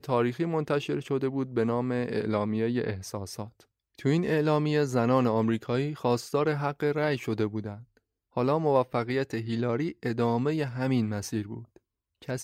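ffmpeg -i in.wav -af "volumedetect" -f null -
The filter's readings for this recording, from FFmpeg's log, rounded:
mean_volume: -28.2 dB
max_volume: -11.1 dB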